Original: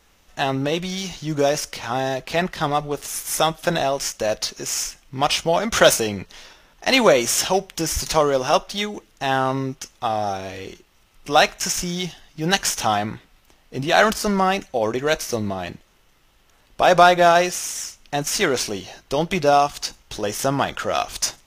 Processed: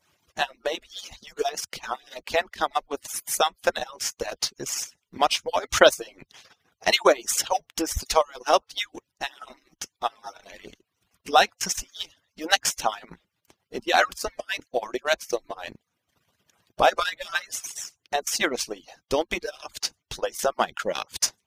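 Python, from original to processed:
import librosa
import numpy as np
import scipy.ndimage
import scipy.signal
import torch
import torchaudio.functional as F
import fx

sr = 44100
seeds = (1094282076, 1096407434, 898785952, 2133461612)

y = fx.hpss_only(x, sr, part='percussive')
y = fx.transient(y, sr, attack_db=4, sustain_db=-10)
y = y * 10.0 ** (-4.0 / 20.0)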